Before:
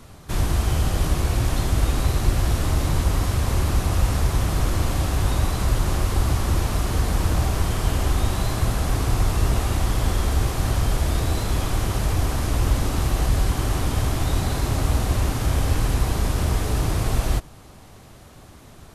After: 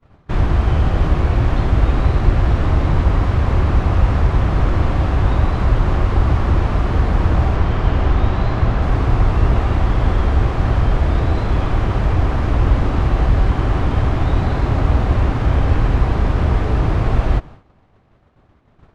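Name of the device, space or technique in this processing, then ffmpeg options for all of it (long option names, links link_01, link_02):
hearing-loss simulation: -filter_complex "[0:a]asettb=1/sr,asplit=3[link_01][link_02][link_03];[link_01]atrim=end=7.564[link_04];[link_02]atrim=start=7.56:end=8.82,asetpts=PTS-STARTPTS,afade=type=in:duration=0.004:curve=qsin,afade=type=out:start_time=1.256:duration=0.004:curve=qsin,acrossover=split=7800[link_05][link_06];[link_06]acompressor=threshold=-53dB:ratio=4:attack=1:release=60[link_07];[link_05][link_07]amix=inputs=2:normalize=0[link_08];[link_03]atrim=start=8.816[link_09];[link_04][link_08]acrossfade=duration=0.004:curve1=hsin:curve2=qsin[link_10];[link_10][link_09]acrossfade=duration=0.004:curve1=qsin:curve2=hsin,lowpass=2200,agate=range=-33dB:threshold=-35dB:ratio=3:detection=peak,volume=6dB"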